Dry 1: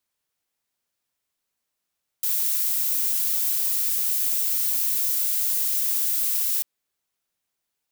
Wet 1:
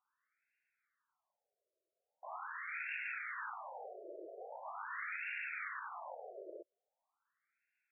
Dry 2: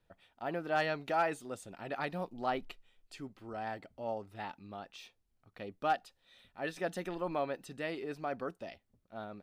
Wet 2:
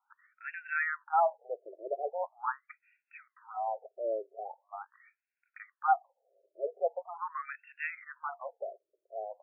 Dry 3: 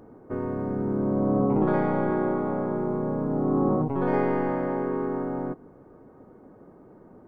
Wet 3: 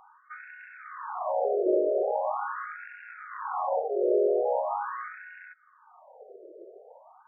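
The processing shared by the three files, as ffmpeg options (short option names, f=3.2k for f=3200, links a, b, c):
-af "asoftclip=type=hard:threshold=-24dB,acontrast=77,afftfilt=real='re*between(b*sr/1024,470*pow(2000/470,0.5+0.5*sin(2*PI*0.42*pts/sr))/1.41,470*pow(2000/470,0.5+0.5*sin(2*PI*0.42*pts/sr))*1.41)':imag='im*between(b*sr/1024,470*pow(2000/470,0.5+0.5*sin(2*PI*0.42*pts/sr))/1.41,470*pow(2000/470,0.5+0.5*sin(2*PI*0.42*pts/sr))*1.41)':win_size=1024:overlap=0.75"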